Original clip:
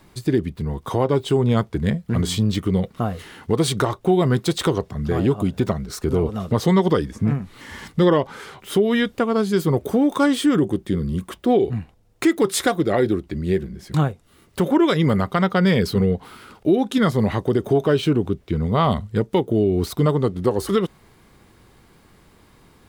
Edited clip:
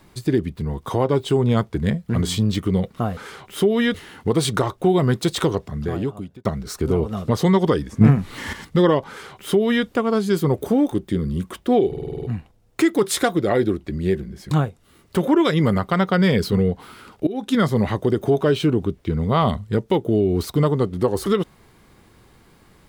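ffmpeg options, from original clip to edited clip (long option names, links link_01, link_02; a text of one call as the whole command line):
ffmpeg -i in.wav -filter_complex "[0:a]asplit=15[link_01][link_02][link_03][link_04][link_05][link_06][link_07][link_08][link_09][link_10][link_11][link_12][link_13][link_14][link_15];[link_01]atrim=end=3.172[link_16];[link_02]atrim=start=8.308:end=9.082[link_17];[link_03]atrim=start=3.168:end=5.68,asetpts=PTS-STARTPTS,afade=type=out:start_time=1.702:duration=0.81[link_18];[link_04]atrim=start=5.68:end=7.242,asetpts=PTS-STARTPTS,afade=type=in:duration=0.004:curve=hsin[link_19];[link_05]atrim=start=7.238:end=7.762,asetpts=PTS-STARTPTS,volume=8dB[link_20];[link_06]atrim=start=7.758:end=10.152[link_21];[link_07]atrim=start=10.698:end=11.712[link_22];[link_08]atrim=start=11.658:end=11.712[link_23];[link_09]atrim=start=11.658:end=11.712[link_24];[link_10]atrim=start=11.658:end=11.712[link_25];[link_11]atrim=start=11.658:end=11.712[link_26];[link_12]atrim=start=11.658:end=11.712[link_27];[link_13]atrim=start=11.658:end=11.712[link_28];[link_14]atrim=start=11.658:end=16.7,asetpts=PTS-STARTPTS,afade=type=out:start_time=5.038:duration=0.004:curve=hsin:silence=0.1[link_29];[link_15]atrim=start=16.7,asetpts=PTS-STARTPTS,afade=type=in:duration=0.26:silence=0.1[link_30];[link_16][link_17]acrossfade=duration=0.004:curve1=hsin:curve2=hsin[link_31];[link_18][link_19]concat=n=2:v=0:a=1[link_32];[link_31][link_32]acrossfade=duration=0.004:curve1=hsin:curve2=hsin[link_33];[link_33][link_20]acrossfade=duration=0.004:curve1=hsin:curve2=hsin[link_34];[link_34][link_21]acrossfade=duration=0.004:curve1=hsin:curve2=hsin[link_35];[link_35][link_22]acrossfade=duration=0.004:curve1=hsin:curve2=hsin[link_36];[link_36][link_23]acrossfade=duration=0.004:curve1=hsin:curve2=hsin[link_37];[link_37][link_24]acrossfade=duration=0.004:curve1=hsin:curve2=hsin[link_38];[link_38][link_25]acrossfade=duration=0.004:curve1=hsin:curve2=hsin[link_39];[link_39][link_26]acrossfade=duration=0.004:curve1=hsin:curve2=hsin[link_40];[link_40][link_27]acrossfade=duration=0.004:curve1=hsin:curve2=hsin[link_41];[link_41][link_28]acrossfade=duration=0.004:curve1=hsin:curve2=hsin[link_42];[link_29][link_30]concat=n=2:v=0:a=1[link_43];[link_42][link_43]acrossfade=duration=0.004:curve1=hsin:curve2=hsin" out.wav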